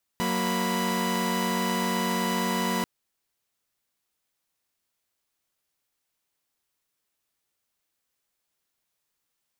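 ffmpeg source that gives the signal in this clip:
ffmpeg -f lavfi -i "aevalsrc='0.0473*((2*mod(185*t,1)-1)+(2*mod(233.08*t,1)-1)+(2*mod(987.77*t,1)-1))':duration=2.64:sample_rate=44100" out.wav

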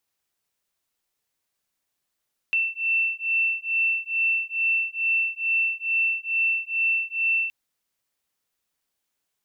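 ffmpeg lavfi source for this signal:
ffmpeg -f lavfi -i "aevalsrc='0.0596*(sin(2*PI*2680*t)+sin(2*PI*2682.3*t))':duration=4.97:sample_rate=44100" out.wav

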